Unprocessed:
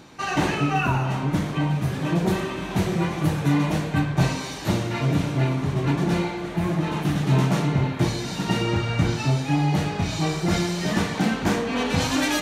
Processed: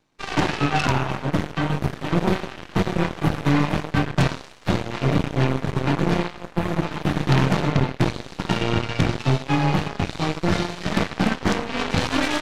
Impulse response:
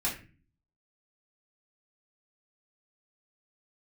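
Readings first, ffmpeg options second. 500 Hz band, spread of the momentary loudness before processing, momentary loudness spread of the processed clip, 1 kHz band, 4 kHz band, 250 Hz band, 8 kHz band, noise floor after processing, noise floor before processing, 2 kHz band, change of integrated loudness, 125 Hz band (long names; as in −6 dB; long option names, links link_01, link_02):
+1.5 dB, 4 LU, 5 LU, +2.0 dB, +1.0 dB, 0.0 dB, −4.0 dB, −42 dBFS, −32 dBFS, +1.5 dB, +0.5 dB, −0.5 dB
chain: -filter_complex "[0:a]acrossover=split=4400[link_01][link_02];[link_02]acompressor=threshold=-52dB:ratio=4:attack=1:release=60[link_03];[link_01][link_03]amix=inputs=2:normalize=0,aeval=exprs='0.335*(cos(1*acos(clip(val(0)/0.335,-1,1)))-cos(1*PI/2))+0.075*(cos(3*acos(clip(val(0)/0.335,-1,1)))-cos(3*PI/2))+0.106*(cos(5*acos(clip(val(0)/0.335,-1,1)))-cos(5*PI/2))+0.0335*(cos(6*acos(clip(val(0)/0.335,-1,1)))-cos(6*PI/2))+0.0944*(cos(7*acos(clip(val(0)/0.335,-1,1)))-cos(7*PI/2))':channel_layout=same,volume=2dB"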